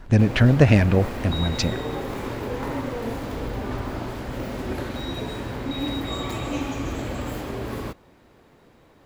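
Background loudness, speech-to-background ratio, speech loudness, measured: -30.5 LUFS, 11.0 dB, -19.5 LUFS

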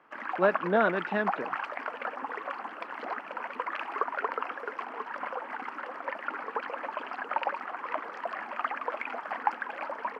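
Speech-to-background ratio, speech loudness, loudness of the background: 7.0 dB, -28.0 LUFS, -35.0 LUFS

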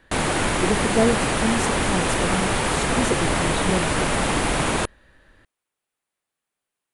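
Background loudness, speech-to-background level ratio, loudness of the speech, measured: -22.0 LUFS, -5.0 dB, -27.0 LUFS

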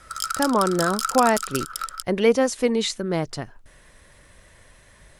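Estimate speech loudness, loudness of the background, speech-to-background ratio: -22.5 LUFS, -28.5 LUFS, 6.0 dB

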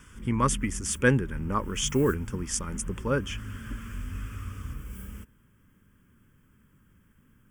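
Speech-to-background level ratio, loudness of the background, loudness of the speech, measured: 12.0 dB, -40.0 LUFS, -28.0 LUFS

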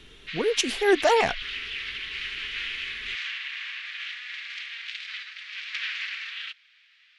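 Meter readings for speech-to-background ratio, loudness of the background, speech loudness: 9.0 dB, -32.5 LUFS, -23.5 LUFS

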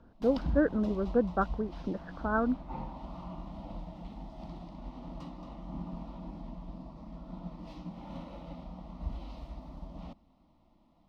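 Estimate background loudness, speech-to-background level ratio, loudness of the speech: -44.0 LUFS, 12.5 dB, -31.5 LUFS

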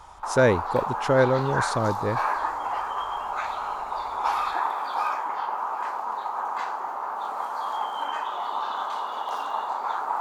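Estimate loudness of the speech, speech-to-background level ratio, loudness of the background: -24.5 LUFS, 4.5 dB, -29.0 LUFS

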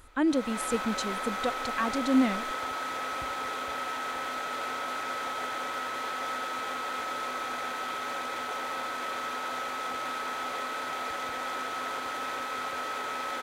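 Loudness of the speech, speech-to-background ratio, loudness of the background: -29.5 LUFS, 4.0 dB, -33.5 LUFS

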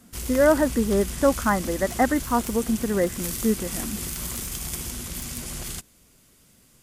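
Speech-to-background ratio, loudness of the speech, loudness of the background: 8.0 dB, -23.5 LUFS, -31.5 LUFS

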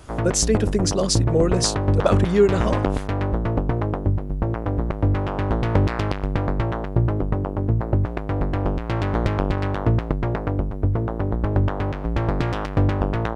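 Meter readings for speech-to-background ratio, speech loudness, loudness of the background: 2.0 dB, -21.5 LUFS, -23.5 LUFS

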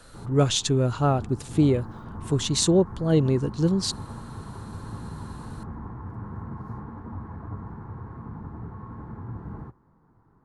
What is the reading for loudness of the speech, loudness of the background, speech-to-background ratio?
-23.5 LUFS, -39.0 LUFS, 15.5 dB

